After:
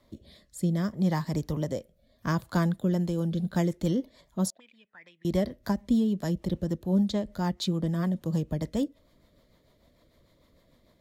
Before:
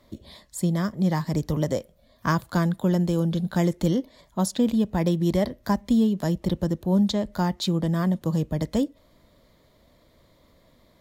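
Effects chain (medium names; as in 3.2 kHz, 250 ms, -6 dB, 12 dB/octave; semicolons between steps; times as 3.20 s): 4.50–5.25 s: auto-wah 590–2500 Hz, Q 7.8, up, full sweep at -18 dBFS; rotary cabinet horn 0.65 Hz, later 6.7 Hz, at 2.52 s; trim -2.5 dB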